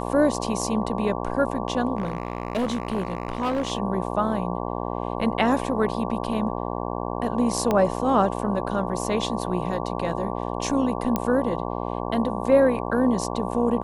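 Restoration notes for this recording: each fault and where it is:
buzz 60 Hz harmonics 19 -29 dBFS
1.97–3.72 s: clipped -20.5 dBFS
7.71 s: pop -10 dBFS
11.16 s: pop -10 dBFS

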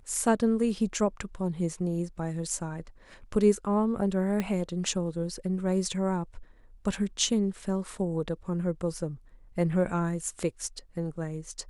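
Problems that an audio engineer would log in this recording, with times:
4.40 s: pop -16 dBFS

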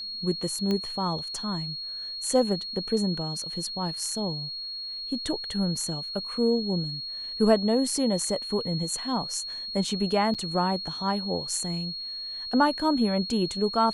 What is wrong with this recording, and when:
whine 4.3 kHz -33 dBFS
0.71 s: pop -16 dBFS
10.34–10.35 s: dropout 7.2 ms

